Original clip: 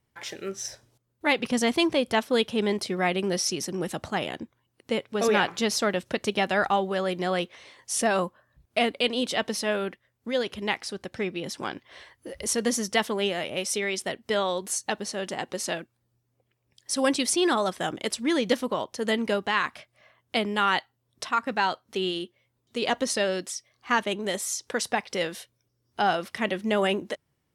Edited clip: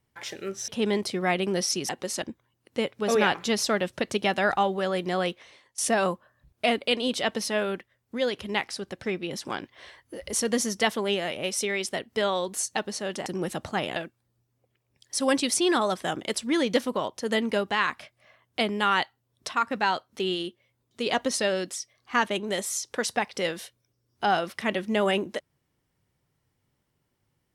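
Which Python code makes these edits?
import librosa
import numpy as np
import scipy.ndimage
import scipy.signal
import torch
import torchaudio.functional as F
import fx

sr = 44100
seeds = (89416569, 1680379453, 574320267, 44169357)

y = fx.edit(x, sr, fx.cut(start_s=0.68, length_s=1.76),
    fx.swap(start_s=3.65, length_s=0.7, other_s=15.39, other_length_s=0.33),
    fx.fade_out_to(start_s=7.26, length_s=0.65, curve='qsin', floor_db=-19.5), tone=tone)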